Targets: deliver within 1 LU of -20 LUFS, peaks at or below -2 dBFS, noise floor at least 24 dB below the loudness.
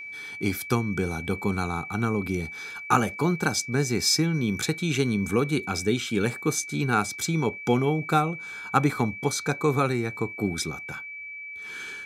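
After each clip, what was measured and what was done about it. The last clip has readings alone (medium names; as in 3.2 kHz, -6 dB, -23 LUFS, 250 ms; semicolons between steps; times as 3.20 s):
steady tone 2.3 kHz; tone level -36 dBFS; loudness -26.5 LUFS; peak level -4.5 dBFS; loudness target -20.0 LUFS
-> band-stop 2.3 kHz, Q 30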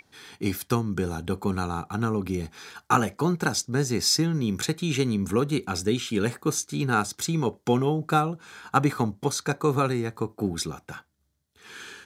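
steady tone not found; loudness -26.5 LUFS; peak level -5.0 dBFS; loudness target -20.0 LUFS
-> trim +6.5 dB; peak limiter -2 dBFS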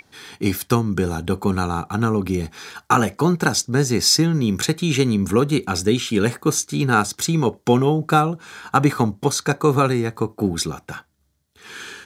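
loudness -20.0 LUFS; peak level -2.0 dBFS; noise floor -64 dBFS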